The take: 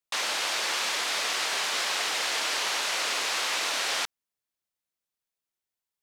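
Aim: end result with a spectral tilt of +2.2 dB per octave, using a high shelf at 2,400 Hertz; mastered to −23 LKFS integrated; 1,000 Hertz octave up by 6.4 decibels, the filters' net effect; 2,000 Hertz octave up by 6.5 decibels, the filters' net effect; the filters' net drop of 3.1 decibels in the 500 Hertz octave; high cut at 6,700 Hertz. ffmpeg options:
ffmpeg -i in.wav -af "lowpass=6700,equalizer=frequency=500:width_type=o:gain=-8,equalizer=frequency=1000:width_type=o:gain=8,equalizer=frequency=2000:width_type=o:gain=8,highshelf=frequency=2400:gain=-3.5,volume=0.5dB" out.wav

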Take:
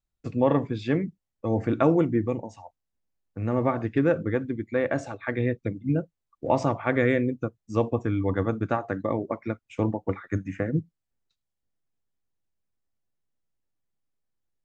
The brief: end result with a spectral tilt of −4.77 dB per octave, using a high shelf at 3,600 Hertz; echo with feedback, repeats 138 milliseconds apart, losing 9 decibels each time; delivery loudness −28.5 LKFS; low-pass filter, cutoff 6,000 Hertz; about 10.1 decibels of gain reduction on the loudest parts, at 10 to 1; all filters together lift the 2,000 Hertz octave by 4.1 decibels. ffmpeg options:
ffmpeg -i in.wav -af "lowpass=6000,equalizer=frequency=2000:width_type=o:gain=6,highshelf=frequency=3600:gain=-4.5,acompressor=threshold=-26dB:ratio=10,aecho=1:1:138|276|414|552:0.355|0.124|0.0435|0.0152,volume=4.5dB" out.wav

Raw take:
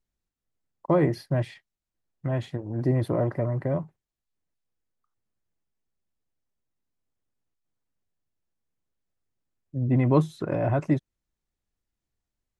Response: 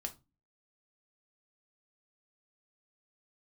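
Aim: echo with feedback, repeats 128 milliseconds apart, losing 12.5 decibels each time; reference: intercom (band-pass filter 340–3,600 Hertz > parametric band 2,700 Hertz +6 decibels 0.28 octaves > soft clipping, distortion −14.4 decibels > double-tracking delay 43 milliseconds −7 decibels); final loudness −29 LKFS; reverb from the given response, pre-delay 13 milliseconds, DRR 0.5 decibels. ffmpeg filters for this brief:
-filter_complex "[0:a]aecho=1:1:128|256|384:0.237|0.0569|0.0137,asplit=2[link_01][link_02];[1:a]atrim=start_sample=2205,adelay=13[link_03];[link_02][link_03]afir=irnorm=-1:irlink=0,volume=1dB[link_04];[link_01][link_04]amix=inputs=2:normalize=0,highpass=340,lowpass=3600,equalizer=frequency=2700:width_type=o:width=0.28:gain=6,asoftclip=threshold=-17dB,asplit=2[link_05][link_06];[link_06]adelay=43,volume=-7dB[link_07];[link_05][link_07]amix=inputs=2:normalize=0,volume=-0.5dB"

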